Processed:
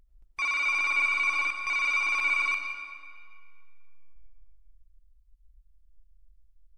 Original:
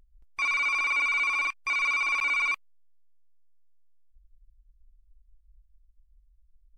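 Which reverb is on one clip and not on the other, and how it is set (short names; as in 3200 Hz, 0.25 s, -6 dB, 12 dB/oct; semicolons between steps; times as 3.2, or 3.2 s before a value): digital reverb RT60 2 s, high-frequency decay 0.85×, pre-delay 50 ms, DRR 6 dB; gain -1.5 dB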